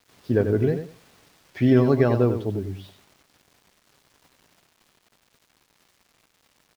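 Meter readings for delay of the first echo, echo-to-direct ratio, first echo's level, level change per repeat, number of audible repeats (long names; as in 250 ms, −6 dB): 93 ms, −9.0 dB, −9.0 dB, −14.0 dB, 2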